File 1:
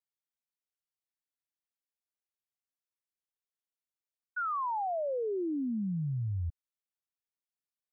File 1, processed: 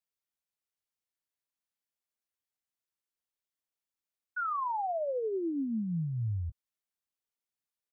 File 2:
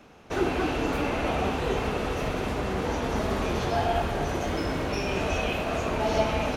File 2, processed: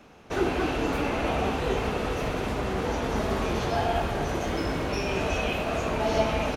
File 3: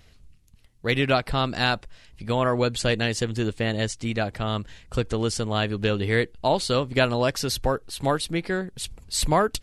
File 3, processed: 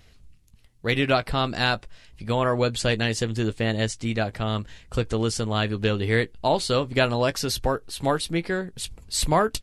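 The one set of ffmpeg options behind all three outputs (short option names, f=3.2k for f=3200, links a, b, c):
-filter_complex "[0:a]asplit=2[a][b];[b]adelay=18,volume=-14dB[c];[a][c]amix=inputs=2:normalize=0"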